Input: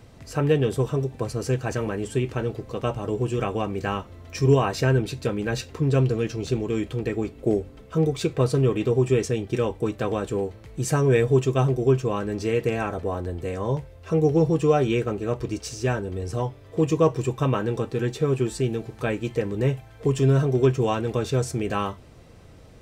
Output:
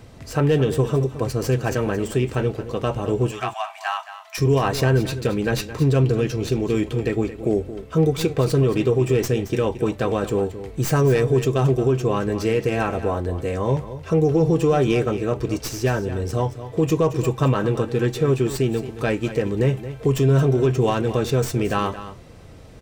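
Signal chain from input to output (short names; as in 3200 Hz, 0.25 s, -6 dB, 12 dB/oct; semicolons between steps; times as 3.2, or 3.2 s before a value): tracing distortion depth 0.089 ms; limiter -14.5 dBFS, peak gain reduction 6 dB; 3.31–4.38 brick-wall FIR high-pass 620 Hz; echo 0.222 s -13 dB; gain +4.5 dB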